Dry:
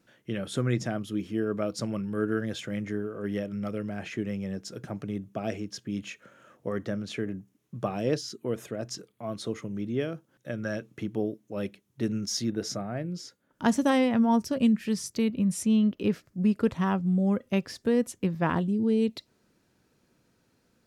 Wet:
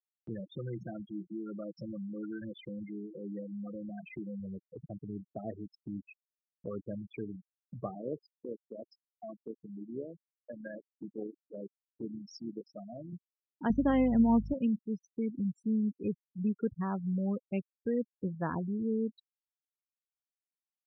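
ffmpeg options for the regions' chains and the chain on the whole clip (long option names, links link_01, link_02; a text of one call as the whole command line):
ffmpeg -i in.wav -filter_complex "[0:a]asettb=1/sr,asplit=3[link_01][link_02][link_03];[link_01]atrim=end=0.404[link_04];[link_02]atrim=start=0.4:end=4.4,asetpts=PTS-STARTPTS,afade=type=in:duration=0.004:curve=qsin,afade=type=out:start_time=3.996:duration=0.004:curve=qsin,aecho=1:1:5.8:0.64,atrim=end_sample=176400,acompressor=threshold=-31dB:ratio=2:attack=3.2:release=140:knee=1:detection=peak[link_05];[link_03]atrim=start=4.396[link_06];[link_04][link_05]acrossfade=duration=0.004:curve1=hsin:curve2=qsin[link_07];[link_07][link_06]acrossfade=duration=0.004:curve1=qsin:curve2=hsin,asettb=1/sr,asplit=3[link_08][link_09][link_10];[link_08]atrim=end=7.954[link_11];[link_09]atrim=start=7.95:end=13.13,asetpts=PTS-STARTPTS,afade=type=in:duration=0.004:curve=qsin,afade=type=out:start_time=5.176:duration=0.004:curve=qsin,tremolo=f=78:d=0.519,highpass=170,aecho=1:1:86:0.075,atrim=end_sample=228438[link_12];[link_10]atrim=start=13.126[link_13];[link_11][link_12]acrossfade=duration=0.004:curve1=hsin:curve2=qsin[link_14];[link_14][link_13]acrossfade=duration=0.004:curve1=qsin:curve2=hsin,asettb=1/sr,asplit=3[link_15][link_16][link_17];[link_15]atrim=end=13.704[link_18];[link_16]atrim=start=13.7:end=14.54,asetpts=PTS-STARTPTS,afade=type=in:duration=0.004:curve=qsin,afade=type=out:start_time=0.836:duration=0.004:curve=qsin,equalizer=frequency=130:width_type=o:width=2.5:gain=8.5,aeval=exprs='val(0)+0.0251*(sin(2*PI*50*n/s)+sin(2*PI*2*50*n/s)/2+sin(2*PI*3*50*n/s)/3+sin(2*PI*4*50*n/s)/4+sin(2*PI*5*50*n/s)/5)':channel_layout=same[link_19];[link_17]atrim=start=14.536[link_20];[link_18][link_19]acrossfade=duration=0.004:curve1=hsin:curve2=qsin[link_21];[link_21][link_20]acrossfade=duration=0.004:curve1=qsin:curve2=hsin,afftfilt=real='re*gte(hypot(re,im),0.0631)':imag='im*gte(hypot(re,im),0.0631)':win_size=1024:overlap=0.75,lowpass=3000,acompressor=mode=upward:threshold=-32dB:ratio=2.5,volume=-7.5dB" out.wav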